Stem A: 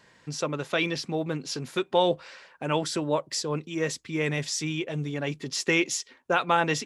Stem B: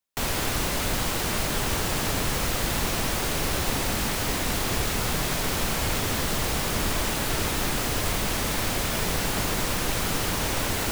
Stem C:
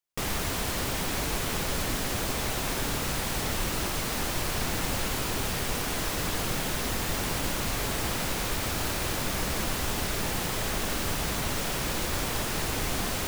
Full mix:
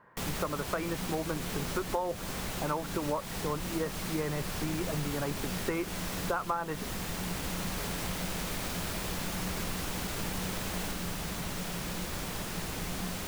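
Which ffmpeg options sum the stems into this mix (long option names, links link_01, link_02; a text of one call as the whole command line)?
ffmpeg -i stem1.wav -i stem2.wav -i stem3.wav -filter_complex "[0:a]lowpass=frequency=1200:width_type=q:width=2.5,volume=-2.5dB,asplit=2[link_01][link_02];[1:a]alimiter=limit=-23.5dB:level=0:latency=1,volume=-7dB[link_03];[2:a]equalizer=frequency=180:width_type=o:width=0.2:gain=13.5,volume=-7.5dB[link_04];[link_02]apad=whole_len=481381[link_05];[link_03][link_05]sidechaincompress=threshold=-30dB:ratio=8:attack=16:release=941[link_06];[link_01][link_06][link_04]amix=inputs=3:normalize=0,acompressor=threshold=-28dB:ratio=8" out.wav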